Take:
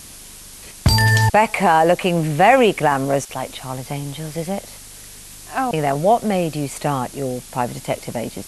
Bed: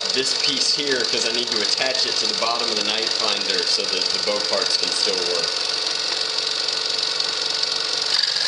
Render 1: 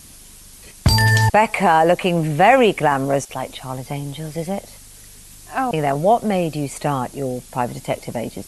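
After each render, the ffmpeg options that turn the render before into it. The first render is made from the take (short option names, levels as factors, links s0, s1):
-af "afftdn=nr=6:nf=-40"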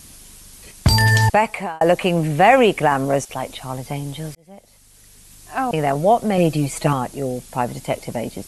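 -filter_complex "[0:a]asettb=1/sr,asplit=3[s0][s1][s2];[s0]atrim=end=6.374[s3];[s1]atrim=start=6.37:end=6.93,asetpts=PTS-STARTPTS,afade=t=in:d=0.004:c=qsin,afade=t=out:st=0.556:d=0.004:c=qsin,aecho=1:1:6.1:0.95,atrim=end_sample=24696[s4];[s2]atrim=start=6.926[s5];[s3][s4]acrossfade=d=0.004:c1=hsin:c2=qsin[s6];[s6][s5]acrossfade=d=0.004:c1=qsin:c2=hsin,asplit=3[s7][s8][s9];[s7]atrim=end=1.81,asetpts=PTS-STARTPTS,afade=t=out:st=1.29:d=0.52[s10];[s8]atrim=start=1.81:end=4.35,asetpts=PTS-STARTPTS,afade=t=in:d=0.004:c=hsin,afade=t=out:st=2.536:d=0.004:c=hsin[s11];[s9]atrim=start=4.35,asetpts=PTS-STARTPTS,afade=t=in:d=1.4[s12];[s10][s11][s12]concat=n=3:v=0:a=1"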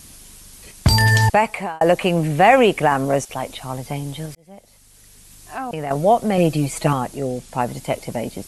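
-filter_complex "[0:a]asettb=1/sr,asplit=3[s0][s1][s2];[s0]atrim=end=4.254[s3];[s1]atrim=start=4.25:end=5.91,asetpts=PTS-STARTPTS,afade=t=in:d=0.004:c=qsin,afade=t=out:st=1.656:d=0.004:c=qsin,acompressor=threshold=0.0398:ratio=2:attack=3.2:release=140:knee=1:detection=peak[s4];[s2]atrim=start=5.906[s5];[s3][s4]acrossfade=d=0.004:c1=hsin:c2=qsin[s6];[s6][s5]acrossfade=d=0.004:c1=qsin:c2=hsin,asettb=1/sr,asplit=3[s7][s8][s9];[s7]atrim=end=7.174[s10];[s8]atrim=start=7.17:end=7.6,asetpts=PTS-STARTPTS,afade=t=in:d=0.004:c=qsin,afade=t=out:st=0.426:d=0.004:c=qsin,lowpass=9600[s11];[s9]atrim=start=7.596[s12];[s10][s11]acrossfade=d=0.004:c1=hsin:c2=qsin[s13];[s13][s12]acrossfade=d=0.004:c1=qsin:c2=hsin"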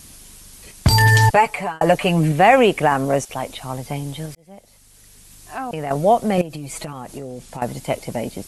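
-filter_complex "[0:a]asettb=1/sr,asplit=3[s0][s1][s2];[s0]atrim=end=0.904[s3];[s1]atrim=start=0.9:end=2.32,asetpts=PTS-STARTPTS,afade=t=in:d=0.004:c=qsin,afade=t=out:st=1.416:d=0.004:c=qsin,aecho=1:1:6.9:0.65,atrim=end_sample=62622[s4];[s2]atrim=start=2.316[s5];[s3][s4]acrossfade=d=0.004:c1=hsin:c2=qsin[s6];[s6][s5]acrossfade=d=0.004:c1=qsin:c2=hsin,asettb=1/sr,asplit=3[s7][s8][s9];[s7]atrim=end=6.414[s10];[s8]atrim=start=6.41:end=7.62,asetpts=PTS-STARTPTS,afade=t=in:d=0.004:c=qsin,afade=t=out:st=1.206:d=0.004:c=qsin,acompressor=threshold=0.0501:ratio=20:attack=3.2:release=140:knee=1:detection=peak[s11];[s9]atrim=start=7.616[s12];[s10][s11]acrossfade=d=0.004:c1=hsin:c2=qsin[s13];[s13][s12]acrossfade=d=0.004:c1=qsin:c2=hsin"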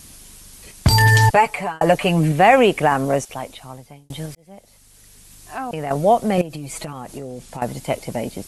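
-filter_complex "[0:a]asplit=2[s0][s1];[s0]atrim=end=4.1,asetpts=PTS-STARTPTS,afade=t=out:st=3.09:d=1.01[s2];[s1]atrim=start=4.1,asetpts=PTS-STARTPTS,afade=t=in:d=0.004:c=hsin[s3];[s2][s3]concat=n=2:v=0:a=1"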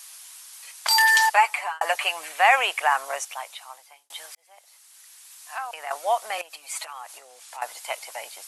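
-af "highpass=f=860:w=0.5412,highpass=f=860:w=1.3066"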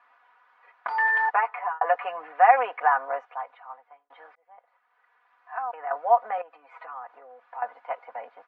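-af "lowpass=f=1500:w=0.5412,lowpass=f=1500:w=1.3066,aecho=1:1:4.1:0.78"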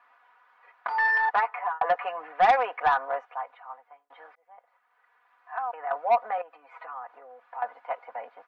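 -af "asoftclip=type=tanh:threshold=0.224"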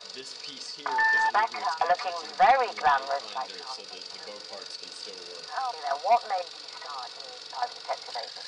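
-filter_complex "[1:a]volume=0.1[s0];[0:a][s0]amix=inputs=2:normalize=0"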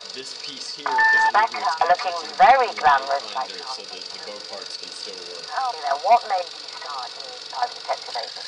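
-af "volume=2.11"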